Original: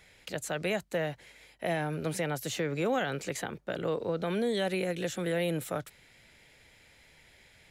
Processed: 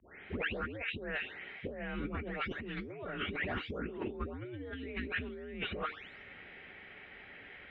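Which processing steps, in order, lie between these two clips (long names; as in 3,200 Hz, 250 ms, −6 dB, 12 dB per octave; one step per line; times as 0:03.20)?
every frequency bin delayed by itself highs late, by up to 470 ms
single-sideband voice off tune −110 Hz 190–3,000 Hz
dynamic equaliser 1,000 Hz, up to −4 dB, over −50 dBFS, Q 1.2
compressor whose output falls as the input rises −43 dBFS, ratio −1
hum removal 153.1 Hz, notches 3
level +3 dB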